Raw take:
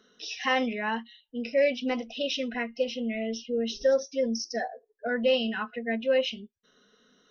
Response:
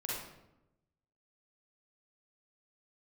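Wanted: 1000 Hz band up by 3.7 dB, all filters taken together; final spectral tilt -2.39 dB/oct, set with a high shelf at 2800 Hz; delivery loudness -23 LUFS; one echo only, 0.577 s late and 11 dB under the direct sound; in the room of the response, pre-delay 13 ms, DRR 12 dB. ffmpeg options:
-filter_complex "[0:a]equalizer=f=1k:t=o:g=4,highshelf=f=2.8k:g=7,aecho=1:1:577:0.282,asplit=2[a][b];[1:a]atrim=start_sample=2205,adelay=13[c];[b][c]afir=irnorm=-1:irlink=0,volume=-14.5dB[d];[a][d]amix=inputs=2:normalize=0,volume=3.5dB"

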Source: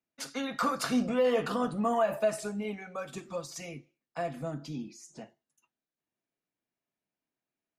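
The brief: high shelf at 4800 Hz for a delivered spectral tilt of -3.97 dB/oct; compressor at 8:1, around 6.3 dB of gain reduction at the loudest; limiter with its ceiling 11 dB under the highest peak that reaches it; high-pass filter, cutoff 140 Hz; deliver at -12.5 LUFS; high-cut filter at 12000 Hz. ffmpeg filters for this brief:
-af "highpass=140,lowpass=12k,highshelf=f=4.8k:g=7.5,acompressor=threshold=-28dB:ratio=8,volume=26.5dB,alimiter=limit=-3dB:level=0:latency=1"

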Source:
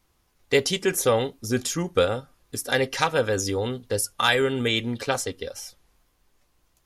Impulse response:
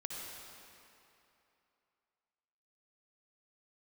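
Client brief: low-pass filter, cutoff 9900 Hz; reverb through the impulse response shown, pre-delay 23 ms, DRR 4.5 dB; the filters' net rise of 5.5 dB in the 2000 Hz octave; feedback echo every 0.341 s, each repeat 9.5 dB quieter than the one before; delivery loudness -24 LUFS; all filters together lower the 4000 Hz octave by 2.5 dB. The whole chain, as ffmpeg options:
-filter_complex "[0:a]lowpass=9.9k,equalizer=f=2k:t=o:g=8.5,equalizer=f=4k:t=o:g=-6.5,aecho=1:1:341|682|1023|1364:0.335|0.111|0.0365|0.012,asplit=2[a][b];[1:a]atrim=start_sample=2205,adelay=23[c];[b][c]afir=irnorm=-1:irlink=0,volume=-4.5dB[d];[a][d]amix=inputs=2:normalize=0,volume=-2.5dB"

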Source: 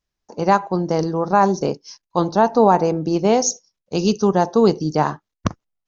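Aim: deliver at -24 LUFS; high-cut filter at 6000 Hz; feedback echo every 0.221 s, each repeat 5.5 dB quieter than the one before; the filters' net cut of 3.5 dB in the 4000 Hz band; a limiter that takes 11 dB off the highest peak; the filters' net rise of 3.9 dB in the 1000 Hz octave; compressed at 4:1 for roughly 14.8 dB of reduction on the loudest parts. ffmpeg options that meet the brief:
-af "lowpass=6k,equalizer=f=1k:t=o:g=5,equalizer=f=4k:t=o:g=-3.5,acompressor=threshold=-25dB:ratio=4,alimiter=limit=-20dB:level=0:latency=1,aecho=1:1:221|442|663|884|1105|1326|1547:0.531|0.281|0.149|0.079|0.0419|0.0222|0.0118,volume=7dB"

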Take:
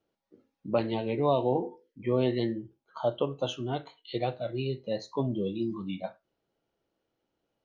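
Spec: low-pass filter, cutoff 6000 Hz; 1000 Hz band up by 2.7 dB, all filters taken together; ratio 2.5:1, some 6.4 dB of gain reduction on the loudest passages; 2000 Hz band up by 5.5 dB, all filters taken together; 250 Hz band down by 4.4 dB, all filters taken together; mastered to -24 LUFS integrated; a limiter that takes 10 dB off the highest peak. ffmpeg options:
-af "lowpass=6k,equalizer=f=250:t=o:g=-6.5,equalizer=f=1k:t=o:g=3,equalizer=f=2k:t=o:g=6.5,acompressor=threshold=-30dB:ratio=2.5,volume=14.5dB,alimiter=limit=-12.5dB:level=0:latency=1"

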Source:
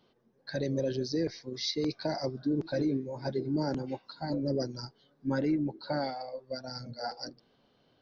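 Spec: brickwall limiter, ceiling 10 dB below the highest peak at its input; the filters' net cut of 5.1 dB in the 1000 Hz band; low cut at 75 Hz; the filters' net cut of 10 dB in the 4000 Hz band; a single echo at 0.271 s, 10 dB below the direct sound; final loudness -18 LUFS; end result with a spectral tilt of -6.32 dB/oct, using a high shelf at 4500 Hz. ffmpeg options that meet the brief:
-af "highpass=75,equalizer=f=1k:t=o:g=-7,equalizer=f=4k:t=o:g=-7.5,highshelf=f=4.5k:g=-7,alimiter=level_in=6dB:limit=-24dB:level=0:latency=1,volume=-6dB,aecho=1:1:271:0.316,volume=22dB"

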